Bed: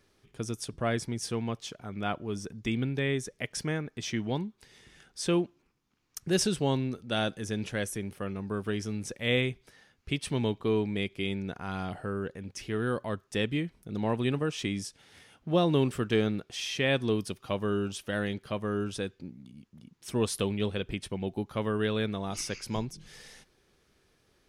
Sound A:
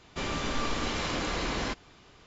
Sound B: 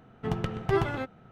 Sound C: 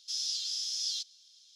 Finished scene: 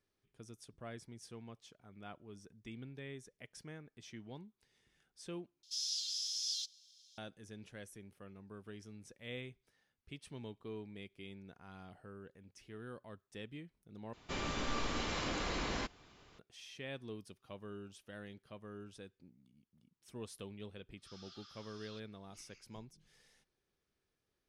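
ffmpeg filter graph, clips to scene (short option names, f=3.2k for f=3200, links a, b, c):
-filter_complex "[3:a]asplit=2[a][b];[0:a]volume=-18.5dB[c];[a]highshelf=f=5.3k:g=5[d];[b]lowpass=f=1.2k:t=q:w=11[e];[c]asplit=3[f][g][h];[f]atrim=end=5.634[i];[d]atrim=end=1.55,asetpts=PTS-STARTPTS,volume=-7dB[j];[g]atrim=start=7.176:end=14.134[k];[1:a]atrim=end=2.26,asetpts=PTS-STARTPTS,volume=-6.5dB[l];[h]atrim=start=16.386[m];[e]atrim=end=1.55,asetpts=PTS-STARTPTS,volume=-1dB,afade=t=in:d=0.004:c=hsin,afade=t=out:st=1.546:d=0.004:c=hsin,adelay=20970[n];[i][j]acrossfade=d=0.004:c1=hsin:c2=hsin[o];[o][k]acrossfade=d=0.004:c1=hsin:c2=hsin[p];[p][l]acrossfade=d=0.004:c1=hsin:c2=hsin[q];[q][m]acrossfade=d=0.004:c1=hsin:c2=hsin[r];[r][n]amix=inputs=2:normalize=0"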